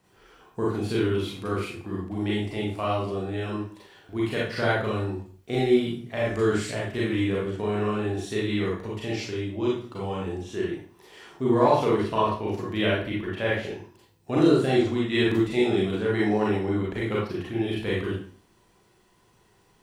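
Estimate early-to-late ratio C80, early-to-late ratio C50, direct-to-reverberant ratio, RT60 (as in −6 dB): 6.5 dB, 1.0 dB, −6.0 dB, 0.45 s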